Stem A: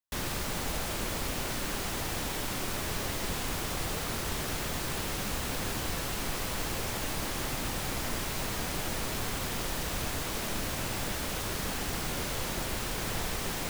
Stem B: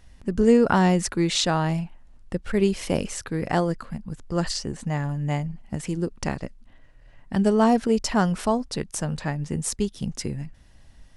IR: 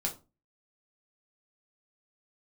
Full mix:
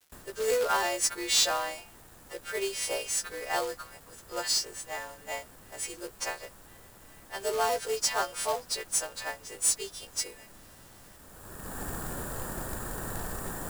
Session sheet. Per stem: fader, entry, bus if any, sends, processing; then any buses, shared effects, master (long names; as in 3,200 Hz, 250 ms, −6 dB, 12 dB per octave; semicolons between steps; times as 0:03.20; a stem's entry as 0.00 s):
−2.5 dB, 0.00 s, no send, brick-wall band-stop 1,900–6,800 Hz; automatic ducking −19 dB, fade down 0.25 s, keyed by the second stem
−5.5 dB, 0.00 s, no send, every partial snapped to a pitch grid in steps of 2 semitones; Butterworth high-pass 410 Hz 36 dB per octave; soft clipping −9.5 dBFS, distortion −21 dB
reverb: not used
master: log-companded quantiser 4 bits